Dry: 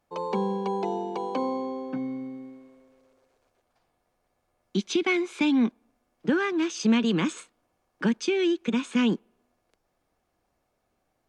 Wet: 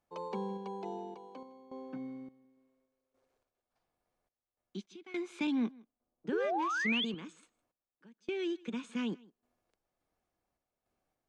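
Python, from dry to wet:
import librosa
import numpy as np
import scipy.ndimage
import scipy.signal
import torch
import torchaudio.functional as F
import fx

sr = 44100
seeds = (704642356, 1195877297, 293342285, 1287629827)

p1 = fx.env_lowpass(x, sr, base_hz=650.0, full_db=-23.5, at=(5.47, 6.27))
p2 = fx.spec_paint(p1, sr, seeds[0], shape='rise', start_s=6.32, length_s=0.73, low_hz=380.0, high_hz=3600.0, level_db=-20.0)
p3 = fx.tremolo_random(p2, sr, seeds[1], hz=3.5, depth_pct=95)
p4 = p3 + fx.echo_single(p3, sr, ms=159, db=-24.0, dry=0)
y = F.gain(torch.from_numpy(p4), -8.5).numpy()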